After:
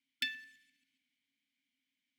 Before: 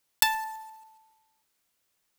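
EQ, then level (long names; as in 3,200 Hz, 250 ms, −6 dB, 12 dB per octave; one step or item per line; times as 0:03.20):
dynamic equaliser 8,100 Hz, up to −8 dB, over −42 dBFS, Q 1.1
formant filter i
linear-phase brick-wall band-stop 300–1,400 Hz
+8.0 dB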